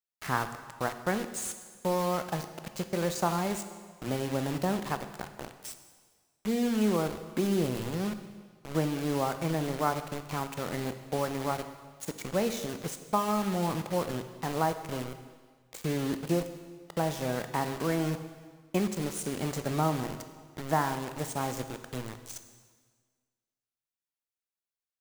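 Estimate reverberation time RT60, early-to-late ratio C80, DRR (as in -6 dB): 1.6 s, 11.5 dB, 9.0 dB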